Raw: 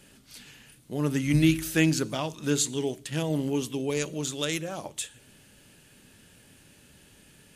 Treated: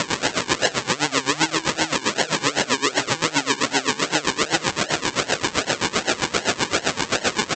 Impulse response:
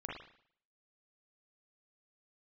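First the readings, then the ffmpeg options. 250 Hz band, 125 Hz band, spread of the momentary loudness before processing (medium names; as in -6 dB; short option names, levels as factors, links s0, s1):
+0.5 dB, -3.5 dB, 14 LU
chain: -filter_complex "[0:a]aeval=exprs='val(0)+0.5*0.0251*sgn(val(0))':c=same,equalizer=f=2600:w=0.73:g=5,aresample=16000,acrusher=samples=19:mix=1:aa=0.000001:lfo=1:lforange=11.4:lforate=2.6,aresample=44100,highpass=f=1500:p=1,acompressor=threshold=0.0178:ratio=6,asplit=2[s0][s1];[s1]aecho=0:1:134:0.126[s2];[s0][s2]amix=inputs=2:normalize=0,alimiter=level_in=33.5:limit=0.891:release=50:level=0:latency=1,aeval=exprs='val(0)*pow(10,-19*(0.5-0.5*cos(2*PI*7.7*n/s))/20)':c=same"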